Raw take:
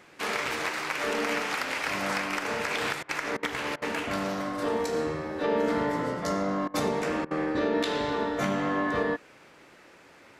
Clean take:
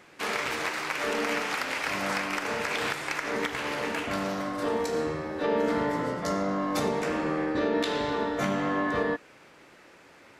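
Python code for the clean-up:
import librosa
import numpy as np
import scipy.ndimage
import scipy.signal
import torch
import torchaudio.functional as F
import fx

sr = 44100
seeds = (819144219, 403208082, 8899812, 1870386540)

y = fx.fix_interpolate(x, sr, at_s=(3.03, 3.37, 3.76, 6.68, 7.25), length_ms=58.0)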